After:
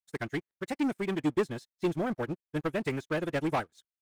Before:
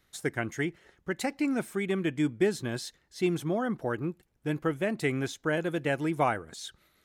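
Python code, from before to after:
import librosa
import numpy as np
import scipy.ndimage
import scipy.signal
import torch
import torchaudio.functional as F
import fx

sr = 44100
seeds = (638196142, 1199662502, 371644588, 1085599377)

y = fx.stretch_vocoder(x, sr, factor=0.57)
y = fx.leveller(y, sr, passes=3)
y = fx.upward_expand(y, sr, threshold_db=-38.0, expansion=2.5)
y = y * 10.0 ** (-4.5 / 20.0)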